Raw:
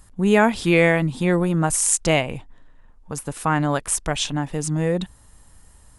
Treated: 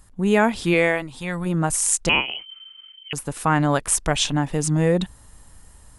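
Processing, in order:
speech leveller 2 s
0:00.73–0:01.45: parametric band 68 Hz → 480 Hz −15 dB 1.5 octaves
0:02.09–0:03.13: voice inversion scrambler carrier 3,100 Hz

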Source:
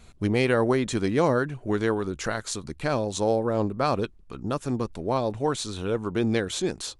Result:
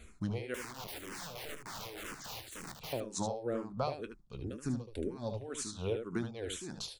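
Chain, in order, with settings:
0:04.29–0:05.28: gain on a spectral selection 600–1,400 Hz −8 dB
downward compressor 10 to 1, threshold −29 dBFS, peak gain reduction 12.5 dB
amplitude tremolo 3.4 Hz, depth 83%
0:00.54–0:02.93: wrap-around overflow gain 38.5 dB
ambience of single reflections 25 ms −17 dB, 75 ms −7 dB
frequency shifter mixed with the dry sound −2 Hz
level +1.5 dB

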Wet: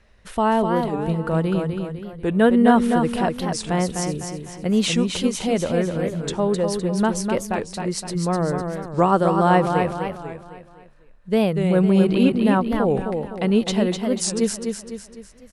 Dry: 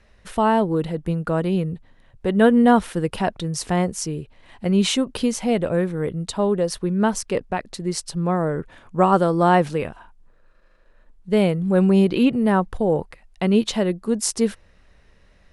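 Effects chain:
repeating echo 252 ms, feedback 45%, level −5.5 dB
wow of a warped record 45 rpm, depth 160 cents
level −1 dB

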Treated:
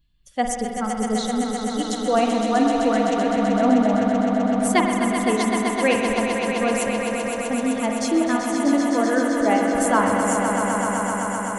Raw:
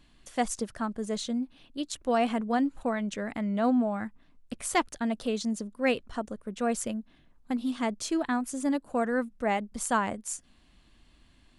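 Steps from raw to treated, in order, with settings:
spectral dynamics exaggerated over time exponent 1.5
echo that builds up and dies away 128 ms, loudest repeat 5, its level −8 dB
on a send at −3 dB: convolution reverb RT60 2.2 s, pre-delay 46 ms
on the sum: level +7.5 dB

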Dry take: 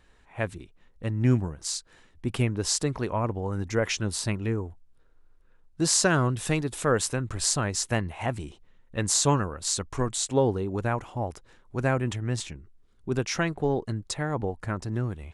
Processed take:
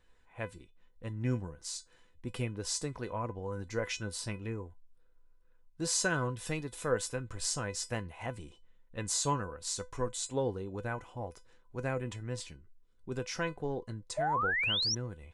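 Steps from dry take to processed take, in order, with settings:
tuned comb filter 500 Hz, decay 0.17 s, harmonics all, mix 80%
sound drawn into the spectrogram rise, 0:14.17–0:14.95, 590–6,000 Hz −33 dBFS
level +2 dB

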